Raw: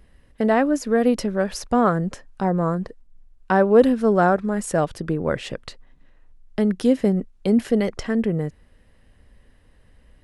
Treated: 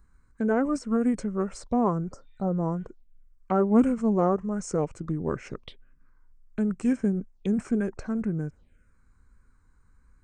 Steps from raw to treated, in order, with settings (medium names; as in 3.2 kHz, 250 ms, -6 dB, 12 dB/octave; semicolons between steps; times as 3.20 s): spectral replace 2.08–2.84 s, 1.8–4.8 kHz both; touch-sensitive phaser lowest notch 560 Hz, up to 4.7 kHz, full sweep at -23.5 dBFS; formant shift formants -4 st; trim -5.5 dB